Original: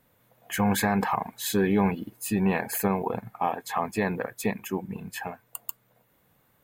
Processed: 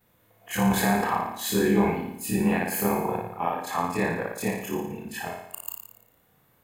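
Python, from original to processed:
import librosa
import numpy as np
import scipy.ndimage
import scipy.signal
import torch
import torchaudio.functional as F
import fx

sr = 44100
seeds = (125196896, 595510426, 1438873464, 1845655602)

y = fx.frame_reverse(x, sr, frame_ms=70.0)
y = fx.room_flutter(y, sr, wall_m=9.8, rt60_s=0.74)
y = y * 10.0 ** (3.0 / 20.0)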